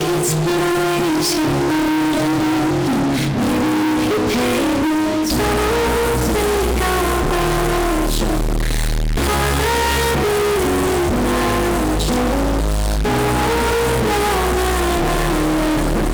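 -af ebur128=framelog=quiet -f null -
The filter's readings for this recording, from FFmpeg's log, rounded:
Integrated loudness:
  I:         -17.3 LUFS
  Threshold: -27.3 LUFS
Loudness range:
  LRA:         0.9 LU
  Threshold: -37.4 LUFS
  LRA low:   -17.9 LUFS
  LRA high:  -17.0 LUFS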